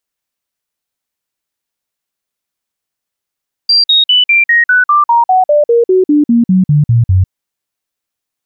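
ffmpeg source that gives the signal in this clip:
-f lavfi -i "aevalsrc='0.562*clip(min(mod(t,0.2),0.15-mod(t,0.2))/0.005,0,1)*sin(2*PI*4730*pow(2,-floor(t/0.2)/3)*mod(t,0.2))':d=3.6:s=44100"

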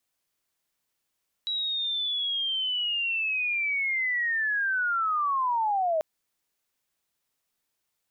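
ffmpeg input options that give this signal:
-f lavfi -i "aevalsrc='pow(10,(-26.5+4*t/4.54)/20)*sin(2*PI*(3900*t-3290*t*t/(2*4.54)))':d=4.54:s=44100"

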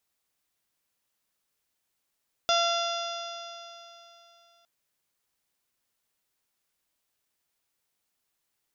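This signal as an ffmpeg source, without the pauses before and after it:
-f lavfi -i "aevalsrc='0.0631*pow(10,-3*t/3.12)*sin(2*PI*681.61*t)+0.0473*pow(10,-3*t/3.12)*sin(2*PI*1366.89*t)+0.00891*pow(10,-3*t/3.12)*sin(2*PI*2059.48*t)+0.0237*pow(10,-3*t/3.12)*sin(2*PI*2762.95*t)+0.0501*pow(10,-3*t/3.12)*sin(2*PI*3480.77*t)+0.00841*pow(10,-3*t/3.12)*sin(2*PI*4216.31*t)+0.0299*pow(10,-3*t/3.12)*sin(2*PI*4972.78*t)+0.0188*pow(10,-3*t/3.12)*sin(2*PI*5753.25*t)+0.00841*pow(10,-3*t/3.12)*sin(2*PI*6560.61*t)':d=2.16:s=44100"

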